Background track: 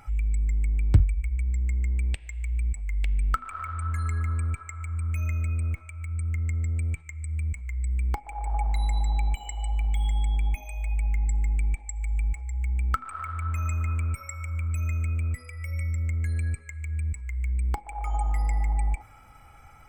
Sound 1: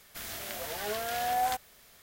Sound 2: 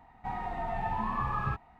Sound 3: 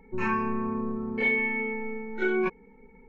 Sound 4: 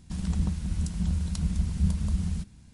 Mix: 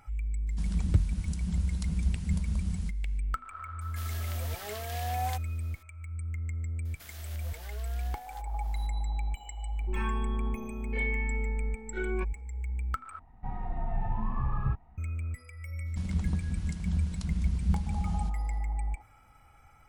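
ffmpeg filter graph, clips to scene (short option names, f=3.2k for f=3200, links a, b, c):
-filter_complex "[4:a]asplit=2[a][b];[1:a]asplit=2[c][d];[0:a]volume=-7dB[e];[c]bandreject=f=1.4k:w=5.6[f];[d]acompressor=threshold=-36dB:ratio=10:attack=0.35:release=318:knee=1:detection=rms[g];[2:a]aemphasis=mode=reproduction:type=riaa[h];[b]highshelf=f=8.7k:g=-11.5[i];[e]asplit=2[j][k];[j]atrim=end=13.194[l];[h]atrim=end=1.79,asetpts=PTS-STARTPTS,volume=-8dB[m];[k]atrim=start=14.976[n];[a]atrim=end=2.73,asetpts=PTS-STARTPTS,volume=-4.5dB,afade=t=in:d=0.004:c=hsin,afade=t=out:st=2.726:d=0.004:c=hsin,adelay=470[o];[f]atrim=end=2.02,asetpts=PTS-STARTPTS,volume=-5dB,afade=t=in:d=0.004:c=hsin,afade=t=out:st=2.016:d=0.004:c=hsin,adelay=168021S[p];[g]atrim=end=2.02,asetpts=PTS-STARTPTS,volume=-5dB,afade=t=in:d=0.004:c=hsin,afade=t=out:st=2.016:d=0.004:c=hsin,adelay=6850[q];[3:a]atrim=end=3.08,asetpts=PTS-STARTPTS,volume=-8.5dB,afade=t=in:d=0.004:c=hsin,afade=t=out:st=3.076:d=0.004:c=hsin,adelay=9750[r];[i]atrim=end=2.73,asetpts=PTS-STARTPTS,volume=-3.5dB,afade=t=in:d=0.004:c=hsin,afade=t=out:st=2.726:d=0.004:c=hsin,adelay=15860[s];[l][m]acrossfade=d=0.004:c1=hsin:c2=hsin[t];[t][n]acrossfade=d=0.004:c1=hsin:c2=hsin[u];[u][o][p][q][r][s]amix=inputs=6:normalize=0"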